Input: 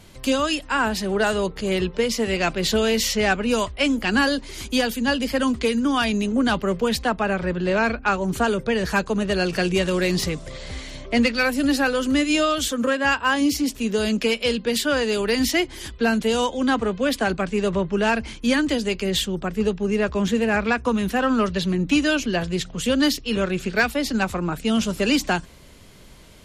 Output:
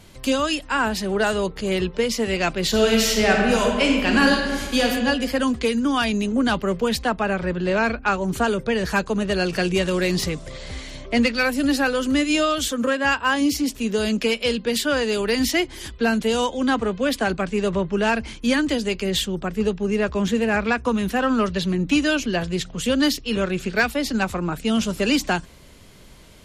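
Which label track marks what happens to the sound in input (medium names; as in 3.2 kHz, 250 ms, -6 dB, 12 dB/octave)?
2.690000	4.860000	reverb throw, RT60 1.5 s, DRR 0 dB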